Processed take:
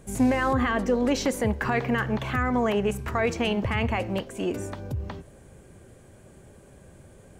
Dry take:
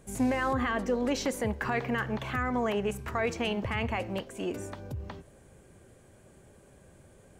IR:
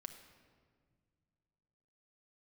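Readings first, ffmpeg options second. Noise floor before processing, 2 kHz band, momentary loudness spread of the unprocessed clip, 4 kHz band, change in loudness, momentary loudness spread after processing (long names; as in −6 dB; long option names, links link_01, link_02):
−57 dBFS, +4.0 dB, 11 LU, +4.0 dB, +5.0 dB, 10 LU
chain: -af "lowshelf=frequency=320:gain=3,volume=4dB"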